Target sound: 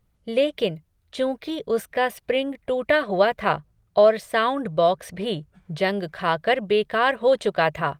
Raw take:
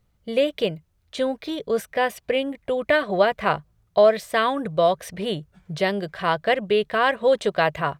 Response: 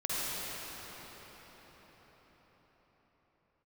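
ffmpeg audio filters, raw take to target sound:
-filter_complex "[0:a]asplit=3[link_01][link_02][link_03];[link_01]afade=type=out:start_time=3.51:duration=0.02[link_04];[link_02]highshelf=frequency=8900:gain=-4,afade=type=in:start_time=3.51:duration=0.02,afade=type=out:start_time=5.83:duration=0.02[link_05];[link_03]afade=type=in:start_time=5.83:duration=0.02[link_06];[link_04][link_05][link_06]amix=inputs=3:normalize=0" -ar 48000 -c:a libopus -b:a 32k

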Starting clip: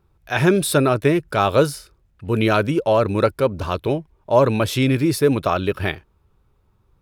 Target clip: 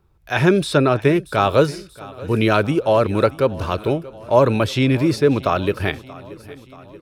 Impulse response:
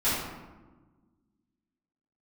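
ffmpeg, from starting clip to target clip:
-filter_complex "[0:a]aecho=1:1:631|1262|1893|2524|3155:0.1|0.059|0.0348|0.0205|0.0121,acrossover=split=440|6900[link_01][link_02][link_03];[link_03]acompressor=threshold=-49dB:ratio=6[link_04];[link_01][link_02][link_04]amix=inputs=3:normalize=0,volume=1dB"

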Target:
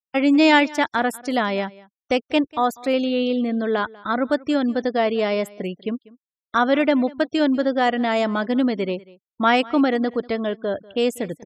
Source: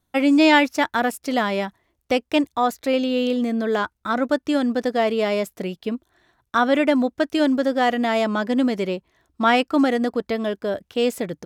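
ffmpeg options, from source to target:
ffmpeg -i in.wav -af "agate=range=-33dB:threshold=-45dB:ratio=3:detection=peak,afftfilt=real='re*gte(hypot(re,im),0.0126)':imag='im*gte(hypot(re,im),0.0126)':win_size=1024:overlap=0.75,aecho=1:1:193:0.0794" out.wav

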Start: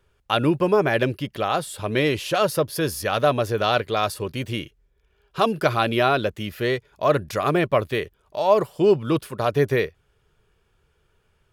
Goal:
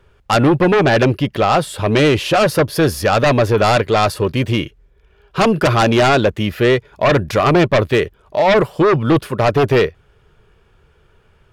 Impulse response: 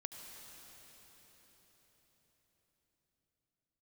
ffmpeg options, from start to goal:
-filter_complex "[0:a]highshelf=frequency=4800:gain=-11,asplit=2[link_01][link_02];[link_02]aeval=exprs='0.562*sin(PI/2*4.47*val(0)/0.562)':channel_layout=same,volume=-7dB[link_03];[link_01][link_03]amix=inputs=2:normalize=0"

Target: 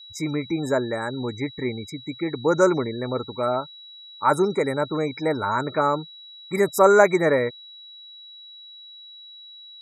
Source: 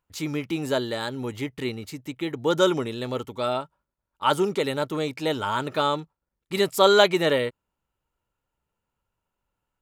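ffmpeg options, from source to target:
ffmpeg -i in.wav -af "asuperstop=centerf=3400:order=20:qfactor=1.4,aeval=exprs='val(0)+0.00631*sin(2*PI*3900*n/s)':channel_layout=same,afftfilt=real='re*gte(hypot(re,im),0.01)':imag='im*gte(hypot(re,im),0.01)':win_size=1024:overlap=0.75,volume=2.5dB" out.wav

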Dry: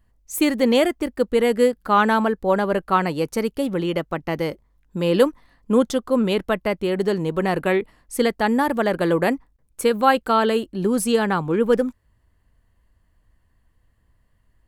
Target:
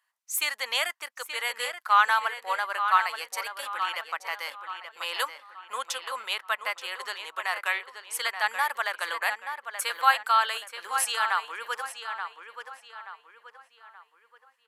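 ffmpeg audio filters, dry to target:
ffmpeg -i in.wav -filter_complex "[0:a]highpass=frequency=1000:width=0.5412,highpass=frequency=1000:width=1.3066,asplit=2[link_01][link_02];[link_02]adelay=878,lowpass=frequency=4000:poles=1,volume=-8dB,asplit=2[link_03][link_04];[link_04]adelay=878,lowpass=frequency=4000:poles=1,volume=0.41,asplit=2[link_05][link_06];[link_06]adelay=878,lowpass=frequency=4000:poles=1,volume=0.41,asplit=2[link_07][link_08];[link_08]adelay=878,lowpass=frequency=4000:poles=1,volume=0.41,asplit=2[link_09][link_10];[link_10]adelay=878,lowpass=frequency=4000:poles=1,volume=0.41[link_11];[link_03][link_05][link_07][link_09][link_11]amix=inputs=5:normalize=0[link_12];[link_01][link_12]amix=inputs=2:normalize=0,aresample=32000,aresample=44100" out.wav

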